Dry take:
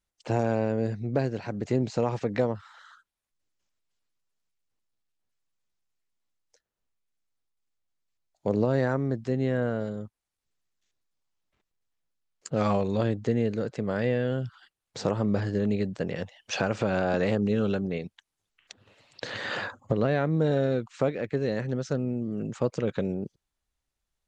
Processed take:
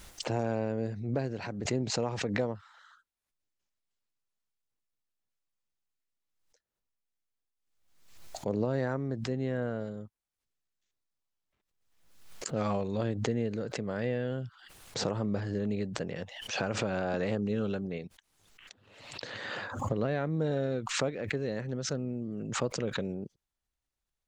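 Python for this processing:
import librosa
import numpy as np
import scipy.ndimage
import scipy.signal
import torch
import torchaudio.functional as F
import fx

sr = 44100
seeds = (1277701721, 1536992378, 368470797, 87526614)

y = fx.pre_swell(x, sr, db_per_s=60.0)
y = y * librosa.db_to_amplitude(-6.0)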